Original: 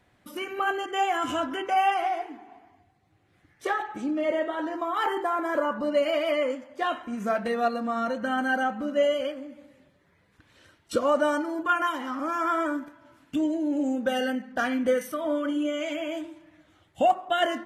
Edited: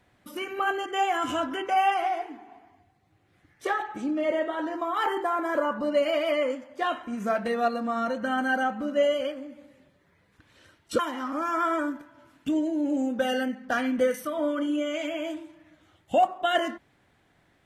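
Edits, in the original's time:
0:10.99–0:11.86: remove

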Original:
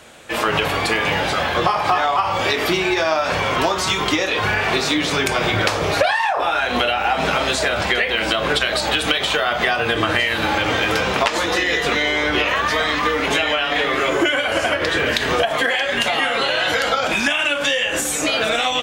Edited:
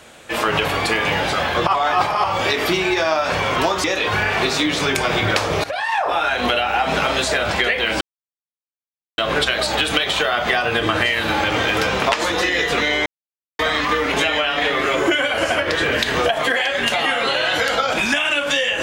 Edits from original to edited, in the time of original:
0:01.67–0:02.24: reverse
0:03.84–0:04.15: remove
0:05.95–0:06.29: fade in linear, from −17.5 dB
0:08.32: splice in silence 1.17 s
0:12.20–0:12.73: silence

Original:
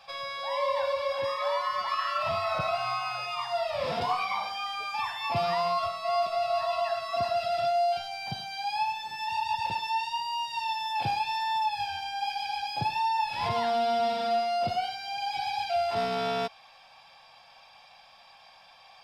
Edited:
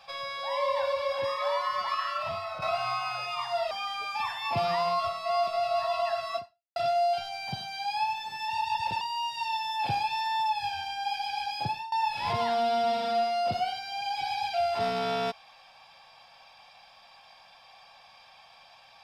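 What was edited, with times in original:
0:01.88–0:02.62: fade out, to −9.5 dB
0:03.71–0:04.50: remove
0:07.15–0:07.55: fade out exponential
0:09.80–0:10.17: remove
0:12.78–0:13.08: fade out, to −21 dB

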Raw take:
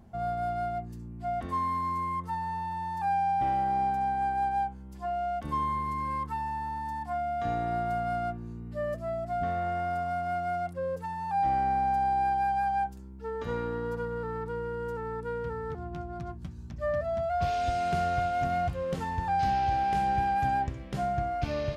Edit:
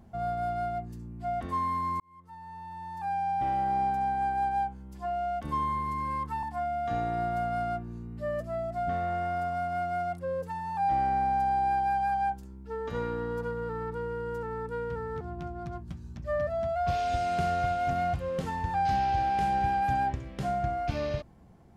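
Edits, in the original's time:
0:02.00–0:03.72: fade in linear
0:06.43–0:06.97: remove

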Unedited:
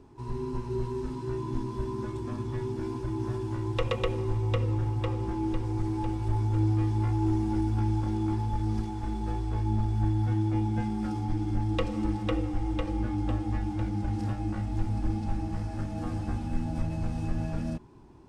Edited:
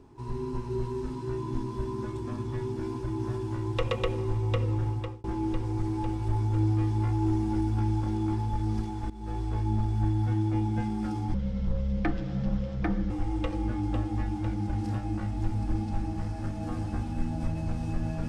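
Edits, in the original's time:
0:04.91–0:05.24: fade out
0:09.10–0:09.41: fade in, from −17 dB
0:11.34–0:12.45: play speed 63%

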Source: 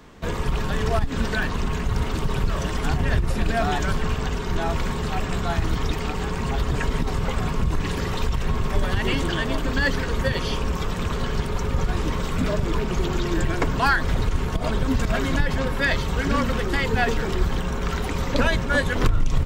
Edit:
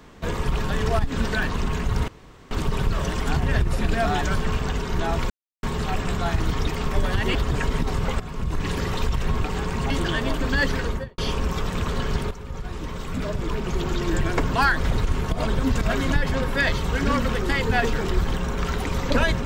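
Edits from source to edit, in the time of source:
0:02.08: splice in room tone 0.43 s
0:04.87: splice in silence 0.33 s
0:06.09–0:06.55: swap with 0:08.64–0:09.14
0:07.40–0:07.90: fade in linear, from −13 dB
0:10.06–0:10.42: fade out and dull
0:11.55–0:13.47: fade in, from −13 dB

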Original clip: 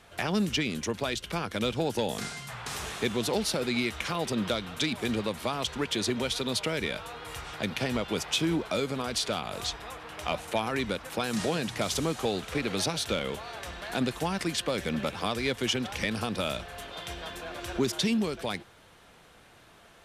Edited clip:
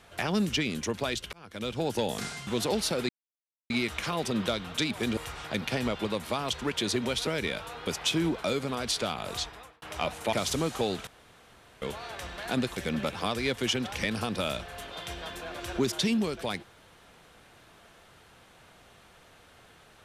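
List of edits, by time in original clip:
0:01.33–0:01.91: fade in
0:02.47–0:03.10: remove
0:03.72: splice in silence 0.61 s
0:06.41–0:06.66: remove
0:07.26–0:08.14: move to 0:05.19
0:09.65–0:10.09: fade out
0:10.60–0:11.77: remove
0:12.51–0:13.26: fill with room tone
0:14.21–0:14.77: remove

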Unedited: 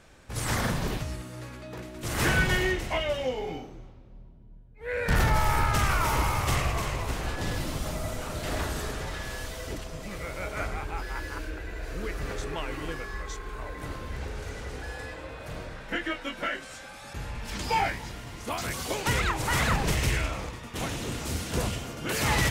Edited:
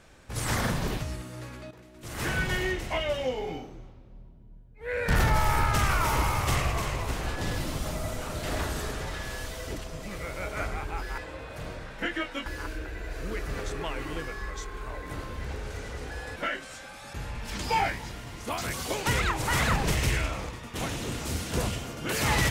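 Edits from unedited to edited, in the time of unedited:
0:01.71–0:03.15: fade in, from −13.5 dB
0:15.08–0:16.36: move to 0:11.18

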